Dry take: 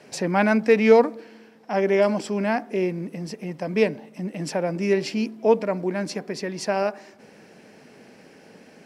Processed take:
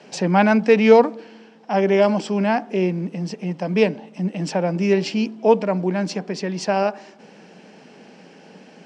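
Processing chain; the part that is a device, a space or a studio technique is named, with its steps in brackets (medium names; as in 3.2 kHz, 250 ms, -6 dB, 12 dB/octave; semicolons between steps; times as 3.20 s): television speaker (cabinet simulation 170–7600 Hz, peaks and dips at 180 Hz +8 dB, 840 Hz +4 dB, 2 kHz -3 dB, 3 kHz +5 dB); trim +2.5 dB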